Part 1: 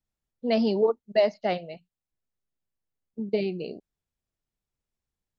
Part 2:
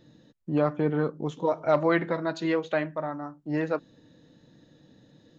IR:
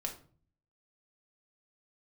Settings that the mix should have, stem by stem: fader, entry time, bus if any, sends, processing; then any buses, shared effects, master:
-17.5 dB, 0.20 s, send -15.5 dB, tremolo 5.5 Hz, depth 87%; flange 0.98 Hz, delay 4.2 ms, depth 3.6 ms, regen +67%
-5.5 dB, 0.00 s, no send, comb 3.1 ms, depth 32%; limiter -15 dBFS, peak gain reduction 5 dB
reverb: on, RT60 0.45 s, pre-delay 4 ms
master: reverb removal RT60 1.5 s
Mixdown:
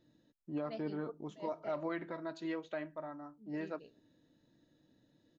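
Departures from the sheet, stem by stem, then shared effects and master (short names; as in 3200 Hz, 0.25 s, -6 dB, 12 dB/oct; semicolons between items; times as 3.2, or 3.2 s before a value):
stem 2 -5.5 dB -> -13.5 dB; master: missing reverb removal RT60 1.5 s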